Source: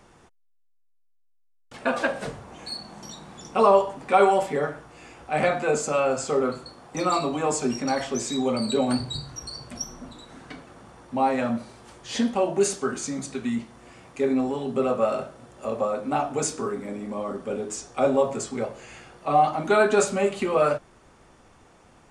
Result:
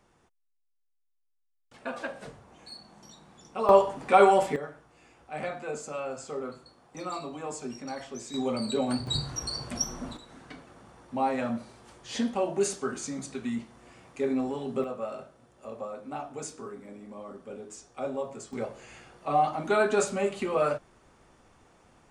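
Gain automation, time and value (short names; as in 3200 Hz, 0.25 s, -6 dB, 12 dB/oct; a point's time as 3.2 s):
-11 dB
from 3.69 s -0.5 dB
from 4.56 s -12 dB
from 8.34 s -5 dB
from 9.07 s +3 dB
from 10.17 s -5 dB
from 14.84 s -12 dB
from 18.53 s -5 dB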